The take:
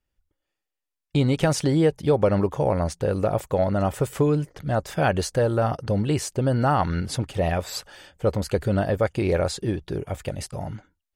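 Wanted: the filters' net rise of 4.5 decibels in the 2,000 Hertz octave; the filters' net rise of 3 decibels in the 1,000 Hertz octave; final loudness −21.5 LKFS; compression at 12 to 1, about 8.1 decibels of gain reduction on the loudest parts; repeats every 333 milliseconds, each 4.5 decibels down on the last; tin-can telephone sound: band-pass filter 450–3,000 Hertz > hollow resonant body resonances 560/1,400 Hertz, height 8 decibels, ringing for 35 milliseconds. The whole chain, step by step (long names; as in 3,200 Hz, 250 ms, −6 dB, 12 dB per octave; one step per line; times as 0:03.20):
parametric band 1,000 Hz +3.5 dB
parametric band 2,000 Hz +5.5 dB
downward compressor 12 to 1, threshold −22 dBFS
band-pass filter 450–3,000 Hz
repeating echo 333 ms, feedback 60%, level −4.5 dB
hollow resonant body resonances 560/1,400 Hz, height 8 dB, ringing for 35 ms
level +6 dB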